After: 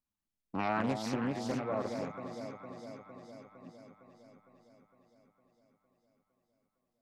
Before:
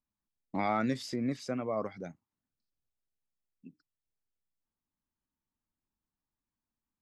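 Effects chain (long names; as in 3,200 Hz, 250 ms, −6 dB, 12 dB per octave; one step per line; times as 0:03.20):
delay that swaps between a low-pass and a high-pass 229 ms, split 860 Hz, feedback 79%, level −5 dB
highs frequency-modulated by the lows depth 0.41 ms
level −2 dB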